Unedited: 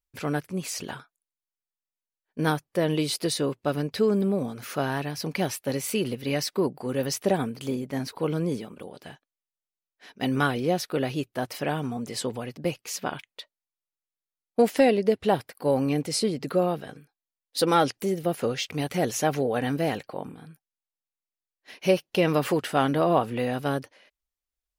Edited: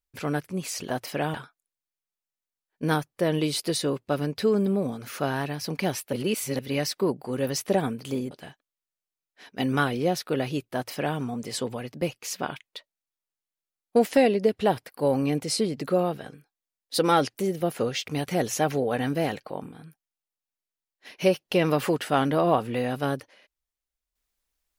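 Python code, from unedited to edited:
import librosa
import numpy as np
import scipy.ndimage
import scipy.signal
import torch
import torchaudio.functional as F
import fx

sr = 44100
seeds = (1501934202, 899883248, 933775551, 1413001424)

y = fx.edit(x, sr, fx.reverse_span(start_s=5.69, length_s=0.46),
    fx.cut(start_s=7.87, length_s=1.07),
    fx.duplicate(start_s=11.37, length_s=0.44, to_s=0.9), tone=tone)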